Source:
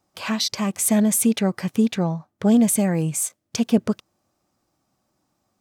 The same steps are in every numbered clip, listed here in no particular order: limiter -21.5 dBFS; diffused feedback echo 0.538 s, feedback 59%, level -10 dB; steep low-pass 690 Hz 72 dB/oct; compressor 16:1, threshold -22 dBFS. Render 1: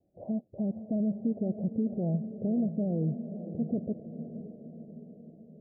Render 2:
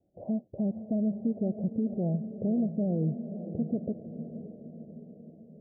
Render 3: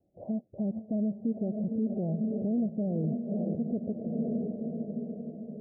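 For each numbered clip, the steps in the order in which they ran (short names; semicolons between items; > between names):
limiter > steep low-pass > compressor > diffused feedback echo; compressor > steep low-pass > limiter > diffused feedback echo; diffused feedback echo > compressor > limiter > steep low-pass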